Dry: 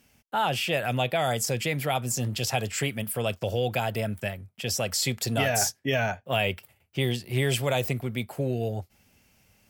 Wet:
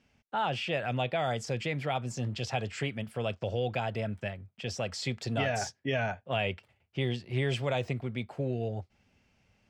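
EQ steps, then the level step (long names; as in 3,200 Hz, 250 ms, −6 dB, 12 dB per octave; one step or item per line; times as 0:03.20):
high-frequency loss of the air 130 metres
−4.0 dB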